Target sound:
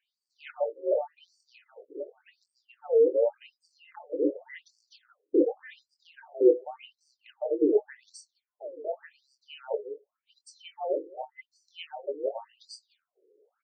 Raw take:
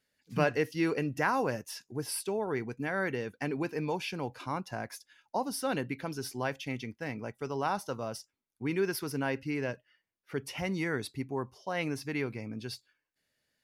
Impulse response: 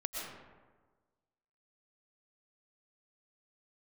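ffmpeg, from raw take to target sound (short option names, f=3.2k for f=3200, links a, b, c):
-filter_complex "[0:a]afftfilt=real='real(if(between(b,1,1008),(2*floor((b-1)/48)+1)*48-b,b),0)':imag='imag(if(between(b,1,1008),(2*floor((b-1)/48)+1)*48-b,b),0)*if(between(b,1,1008),-1,1)':win_size=2048:overlap=0.75,acontrast=23,bass=f=250:g=7,treble=f=4k:g=-13,aexciter=amount=9.6:drive=8.6:freq=9.5k,areverse,acompressor=threshold=-33dB:ratio=6,areverse,lowshelf=f=620:t=q:w=3:g=13.5,asoftclip=type=hard:threshold=-12.5dB,asplit=2[a][b];[b]adelay=24,volume=-7dB[c];[a][c]amix=inputs=2:normalize=0,aecho=1:1:211:0.0841,afftfilt=real='re*between(b*sr/1024,370*pow(6300/370,0.5+0.5*sin(2*PI*0.88*pts/sr))/1.41,370*pow(6300/370,0.5+0.5*sin(2*PI*0.88*pts/sr))*1.41)':imag='im*between(b*sr/1024,370*pow(6300/370,0.5+0.5*sin(2*PI*0.88*pts/sr))/1.41,370*pow(6300/370,0.5+0.5*sin(2*PI*0.88*pts/sr))*1.41)':win_size=1024:overlap=0.75,volume=2dB"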